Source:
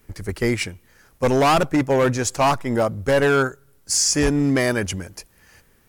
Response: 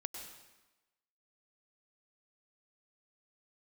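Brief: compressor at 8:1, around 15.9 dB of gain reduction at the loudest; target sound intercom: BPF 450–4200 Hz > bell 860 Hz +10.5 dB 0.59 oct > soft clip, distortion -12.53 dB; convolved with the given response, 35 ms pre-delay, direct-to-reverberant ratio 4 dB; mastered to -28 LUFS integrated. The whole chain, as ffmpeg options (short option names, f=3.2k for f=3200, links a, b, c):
-filter_complex "[0:a]acompressor=threshold=-32dB:ratio=8,asplit=2[a][b];[1:a]atrim=start_sample=2205,adelay=35[c];[b][c]afir=irnorm=-1:irlink=0,volume=-2.5dB[d];[a][d]amix=inputs=2:normalize=0,highpass=450,lowpass=4.2k,equalizer=f=860:t=o:w=0.59:g=10.5,asoftclip=threshold=-26dB,volume=8dB"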